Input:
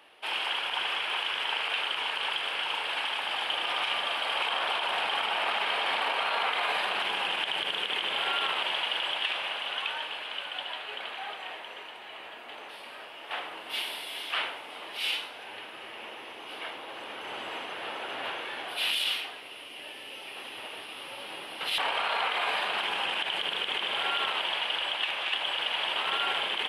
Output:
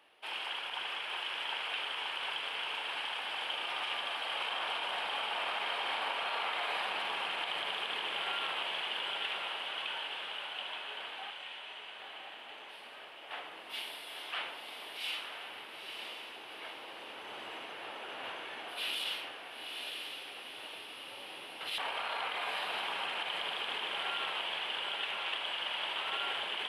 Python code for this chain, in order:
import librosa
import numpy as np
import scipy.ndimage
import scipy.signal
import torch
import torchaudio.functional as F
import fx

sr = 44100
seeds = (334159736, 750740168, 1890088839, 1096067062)

y = fx.brickwall_bandpass(x, sr, low_hz=1800.0, high_hz=10000.0, at=(11.3, 11.99))
y = fx.echo_diffused(y, sr, ms=953, feedback_pct=45, wet_db=-4.5)
y = y * 10.0 ** (-8.0 / 20.0)